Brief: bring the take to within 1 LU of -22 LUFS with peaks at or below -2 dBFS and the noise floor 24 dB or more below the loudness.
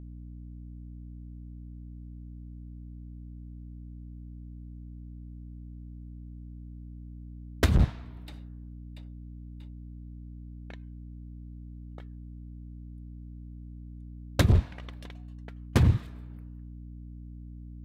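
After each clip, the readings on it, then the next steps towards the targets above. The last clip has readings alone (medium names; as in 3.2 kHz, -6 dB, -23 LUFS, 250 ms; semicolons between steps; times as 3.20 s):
hum 60 Hz; highest harmonic 300 Hz; hum level -40 dBFS; loudness -29.5 LUFS; peak level -13.0 dBFS; loudness target -22.0 LUFS
-> de-hum 60 Hz, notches 5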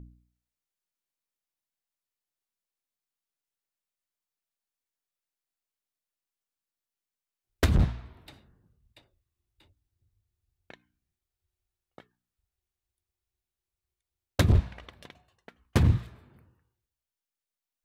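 hum not found; loudness -26.5 LUFS; peak level -12.5 dBFS; loudness target -22.0 LUFS
-> trim +4.5 dB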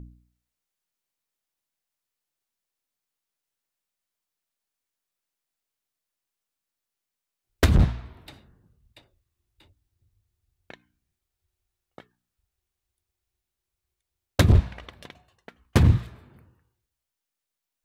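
loudness -22.0 LUFS; peak level -8.0 dBFS; noise floor -86 dBFS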